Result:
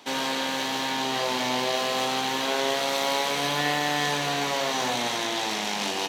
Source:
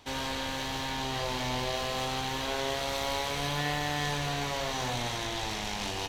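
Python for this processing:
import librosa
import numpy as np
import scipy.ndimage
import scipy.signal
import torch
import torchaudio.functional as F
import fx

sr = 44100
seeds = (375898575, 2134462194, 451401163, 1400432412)

y = scipy.signal.sosfilt(scipy.signal.butter(4, 180.0, 'highpass', fs=sr, output='sos'), x)
y = y * 10.0 ** (6.5 / 20.0)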